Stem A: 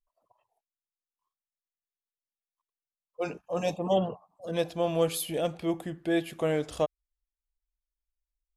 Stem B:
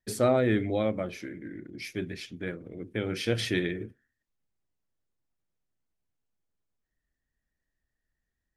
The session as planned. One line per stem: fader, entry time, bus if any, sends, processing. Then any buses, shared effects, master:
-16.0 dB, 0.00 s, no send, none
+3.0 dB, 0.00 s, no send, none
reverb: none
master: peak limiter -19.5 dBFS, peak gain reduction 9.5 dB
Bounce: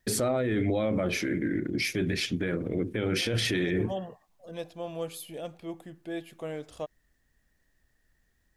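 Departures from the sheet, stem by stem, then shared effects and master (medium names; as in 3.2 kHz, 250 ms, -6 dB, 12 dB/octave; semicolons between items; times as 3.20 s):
stem A -16.0 dB -> -9.0 dB; stem B +3.0 dB -> +13.0 dB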